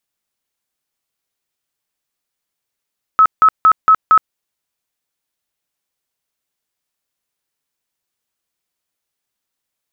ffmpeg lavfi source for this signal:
-f lavfi -i "aevalsrc='0.562*sin(2*PI*1290*mod(t,0.23))*lt(mod(t,0.23),87/1290)':d=1.15:s=44100"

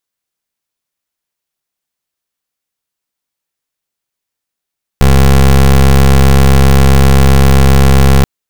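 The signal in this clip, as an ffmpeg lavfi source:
-f lavfi -i "aevalsrc='0.562*(2*lt(mod(67.6*t,1),0.22)-1)':d=3.23:s=44100"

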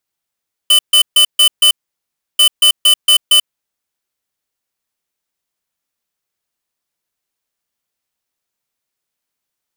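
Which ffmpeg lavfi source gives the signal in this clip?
-f lavfi -i "aevalsrc='0.398*(2*lt(mod(3020*t,1),0.5)-1)*clip(min(mod(mod(t,1.69),0.23),0.09-mod(mod(t,1.69),0.23))/0.005,0,1)*lt(mod(t,1.69),1.15)':d=3.38:s=44100"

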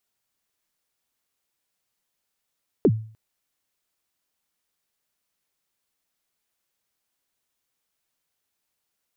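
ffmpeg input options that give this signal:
-f lavfi -i "aevalsrc='0.299*pow(10,-3*t/0.45)*sin(2*PI*(480*0.055/log(110/480)*(exp(log(110/480)*min(t,0.055)/0.055)-1)+110*max(t-0.055,0)))':d=0.3:s=44100"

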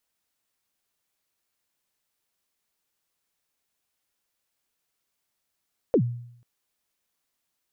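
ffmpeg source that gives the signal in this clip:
-f lavfi -i "aevalsrc='0.2*pow(10,-3*t/0.69)*sin(2*PI*(560*0.078/log(120/560)*(exp(log(120/560)*min(t,0.078)/0.078)-1)+120*max(t-0.078,0)))':d=0.49:s=44100"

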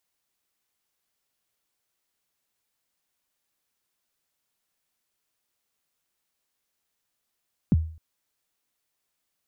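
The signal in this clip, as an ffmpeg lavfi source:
-f lavfi -i "aevalsrc='0.224*pow(10,-3*t/0.46)*sin(2*PI*(260*0.03/log(80/260)*(exp(log(80/260)*min(t,0.03)/0.03)-1)+80*max(t-0.03,0)))':d=0.26:s=44100"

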